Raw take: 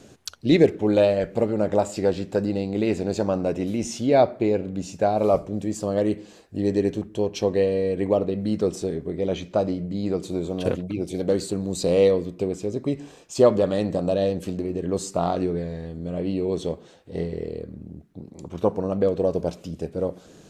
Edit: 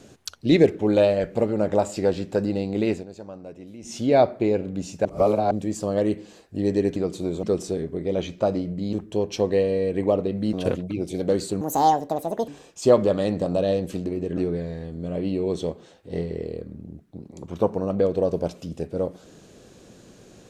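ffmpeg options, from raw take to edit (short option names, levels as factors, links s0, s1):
-filter_complex "[0:a]asplit=12[s0][s1][s2][s3][s4][s5][s6][s7][s8][s9][s10][s11];[s0]atrim=end=3.06,asetpts=PTS-STARTPTS,afade=t=out:st=2.89:d=0.17:silence=0.16788[s12];[s1]atrim=start=3.06:end=3.82,asetpts=PTS-STARTPTS,volume=0.168[s13];[s2]atrim=start=3.82:end=5.052,asetpts=PTS-STARTPTS,afade=t=in:d=0.17:silence=0.16788[s14];[s3]atrim=start=5.048:end=5.512,asetpts=PTS-STARTPTS,areverse[s15];[s4]atrim=start=5.508:end=6.962[s16];[s5]atrim=start=10.058:end=10.532[s17];[s6]atrim=start=8.558:end=10.062[s18];[s7]atrim=start=6.958:end=8.562[s19];[s8]atrim=start=10.528:end=11.614[s20];[s9]atrim=start=11.61:end=13.01,asetpts=PTS-STARTPTS,asetrate=71001,aresample=44100[s21];[s10]atrim=start=13.006:end=14.902[s22];[s11]atrim=start=15.388[s23];[s12][s13][s14]concat=n=3:v=0:a=1[s24];[s24][s15]acrossfade=d=0.004:c1=hsin:c2=hsin[s25];[s25][s16]acrossfade=d=0.004:c1=hsin:c2=hsin[s26];[s26][s17]acrossfade=d=0.004:c1=hsin:c2=hsin[s27];[s27][s18]acrossfade=d=0.004:c1=hsin:c2=hsin[s28];[s28][s19]acrossfade=d=0.004:c1=hsin:c2=hsin[s29];[s29][s20]acrossfade=d=0.004:c1=hsin:c2=hsin[s30];[s30][s21]acrossfade=d=0.004:c1=hsin:c2=hsin[s31];[s31][s22]acrossfade=d=0.004:c1=hsin:c2=hsin[s32];[s32][s23]acrossfade=d=0.004:c1=hsin:c2=hsin"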